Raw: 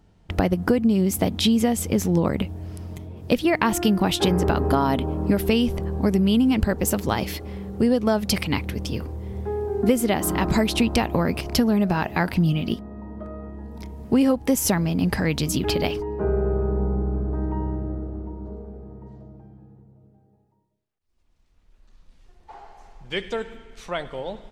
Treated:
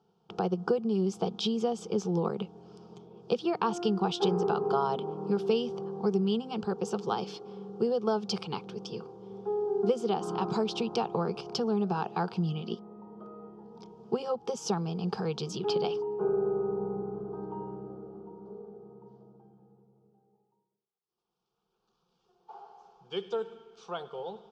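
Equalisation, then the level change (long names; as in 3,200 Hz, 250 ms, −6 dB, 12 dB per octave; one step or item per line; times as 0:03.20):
loudspeaker in its box 280–4,800 Hz, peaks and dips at 300 Hz −10 dB, 1,000 Hz −7 dB, 1,700 Hz −8 dB, 2,600 Hz −5 dB, 4,000 Hz −8 dB
phaser with its sweep stopped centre 400 Hz, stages 8
0.0 dB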